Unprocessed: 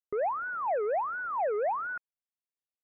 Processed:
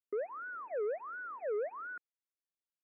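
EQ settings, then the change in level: band-pass 260–2400 Hz; distance through air 230 m; static phaser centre 340 Hz, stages 4; -1.5 dB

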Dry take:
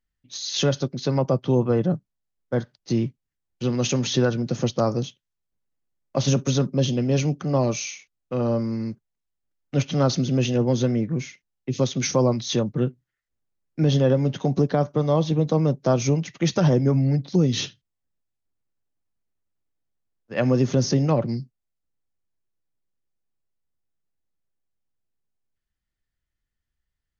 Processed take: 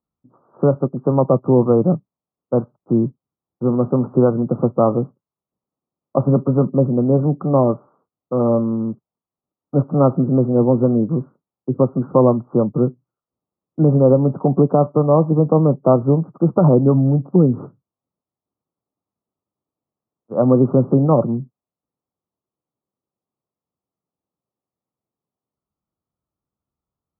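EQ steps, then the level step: high-pass 140 Hz; steep low-pass 1.3 kHz 96 dB/octave; +7.5 dB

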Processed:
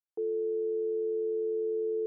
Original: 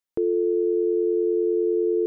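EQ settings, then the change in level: two resonant band-passes 580 Hz, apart 0.77 oct; -6.5 dB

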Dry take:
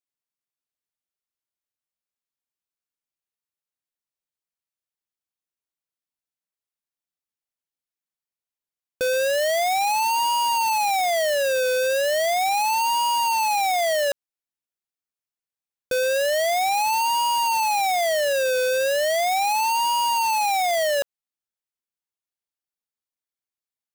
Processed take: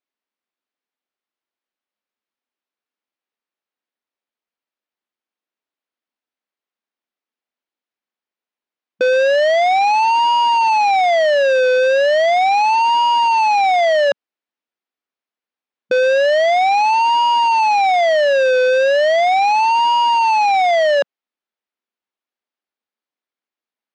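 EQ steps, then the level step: brick-wall FIR band-pass 190–9900 Hz; distance through air 220 m; +9.0 dB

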